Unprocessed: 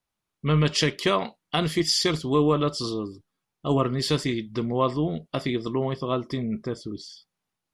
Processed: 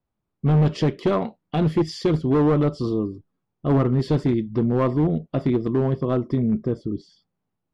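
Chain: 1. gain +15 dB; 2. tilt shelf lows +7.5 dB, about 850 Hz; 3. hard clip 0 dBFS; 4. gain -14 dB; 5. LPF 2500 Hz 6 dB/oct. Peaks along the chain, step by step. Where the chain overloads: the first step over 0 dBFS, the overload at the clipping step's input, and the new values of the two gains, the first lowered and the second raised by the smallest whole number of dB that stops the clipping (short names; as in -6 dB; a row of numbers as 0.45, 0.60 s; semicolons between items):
+5.5, +10.0, 0.0, -14.0, -14.0 dBFS; step 1, 10.0 dB; step 1 +5 dB, step 4 -4 dB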